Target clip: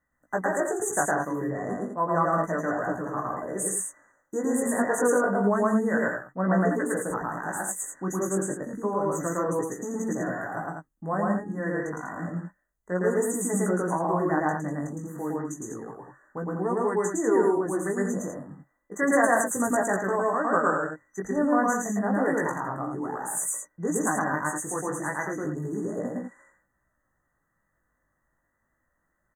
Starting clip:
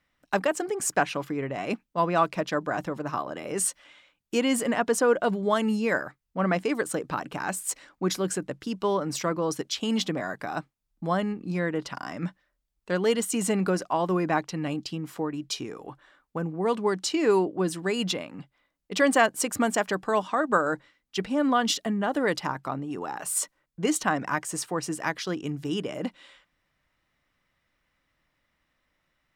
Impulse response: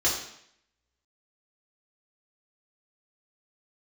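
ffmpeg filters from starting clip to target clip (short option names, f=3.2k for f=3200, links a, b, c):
-af "aecho=1:1:110.8|151.6|195.3:1|0.355|0.501,afftfilt=real='re*(1-between(b*sr/4096,2000,6000))':imag='im*(1-between(b*sr/4096,2000,6000))':win_size=4096:overlap=0.75,flanger=delay=16:depth=4.5:speed=0.3"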